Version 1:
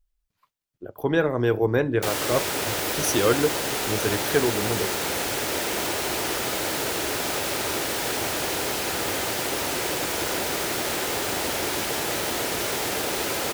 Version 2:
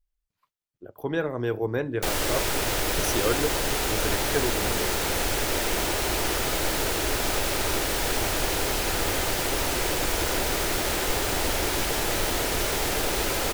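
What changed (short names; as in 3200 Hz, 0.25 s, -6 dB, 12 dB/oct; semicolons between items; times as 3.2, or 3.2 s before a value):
speech -5.5 dB; background: remove HPF 120 Hz 12 dB/oct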